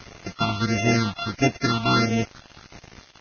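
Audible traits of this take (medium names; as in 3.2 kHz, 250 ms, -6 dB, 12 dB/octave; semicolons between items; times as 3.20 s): a buzz of ramps at a fixed pitch in blocks of 64 samples; phasing stages 6, 1.5 Hz, lowest notch 490–1200 Hz; a quantiser's noise floor 8-bit, dither none; Vorbis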